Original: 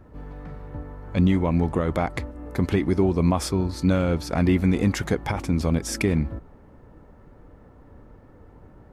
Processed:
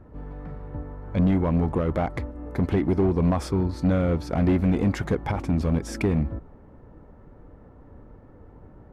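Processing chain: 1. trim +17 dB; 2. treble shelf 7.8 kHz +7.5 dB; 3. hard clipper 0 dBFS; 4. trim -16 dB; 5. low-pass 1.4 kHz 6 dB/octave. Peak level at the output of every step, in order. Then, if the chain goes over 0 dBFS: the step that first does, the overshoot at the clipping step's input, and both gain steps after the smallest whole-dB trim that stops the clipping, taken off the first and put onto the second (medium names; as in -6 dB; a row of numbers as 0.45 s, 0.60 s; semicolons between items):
+8.0 dBFS, +8.0 dBFS, 0.0 dBFS, -16.0 dBFS, -16.0 dBFS; step 1, 8.0 dB; step 1 +9 dB, step 4 -8 dB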